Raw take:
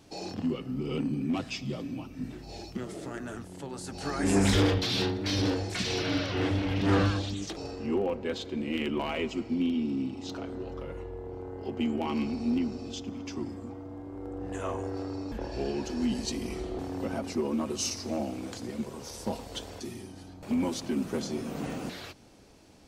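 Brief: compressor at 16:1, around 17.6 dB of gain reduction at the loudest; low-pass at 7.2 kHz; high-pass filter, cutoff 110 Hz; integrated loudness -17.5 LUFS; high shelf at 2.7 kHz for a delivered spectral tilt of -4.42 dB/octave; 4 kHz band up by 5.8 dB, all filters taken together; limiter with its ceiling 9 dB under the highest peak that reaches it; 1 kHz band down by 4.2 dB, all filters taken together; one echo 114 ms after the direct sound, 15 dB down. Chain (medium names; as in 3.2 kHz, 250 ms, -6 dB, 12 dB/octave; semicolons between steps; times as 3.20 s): high-pass 110 Hz; low-pass 7.2 kHz; peaking EQ 1 kHz -6.5 dB; treble shelf 2.7 kHz +3 dB; peaking EQ 4 kHz +5.5 dB; compression 16:1, threshold -38 dBFS; peak limiter -35.5 dBFS; delay 114 ms -15 dB; trim +26.5 dB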